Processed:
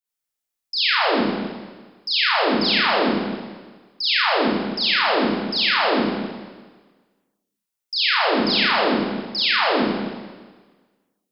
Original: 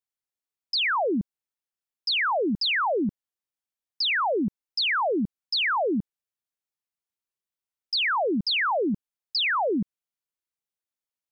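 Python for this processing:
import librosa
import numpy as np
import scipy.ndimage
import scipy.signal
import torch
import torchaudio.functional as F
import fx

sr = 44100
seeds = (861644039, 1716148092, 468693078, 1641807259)

y = fx.high_shelf(x, sr, hz=5000.0, db=5.5)
y = fx.rev_schroeder(y, sr, rt60_s=1.4, comb_ms=26, drr_db=-8.5)
y = y * librosa.db_to_amplitude(-4.0)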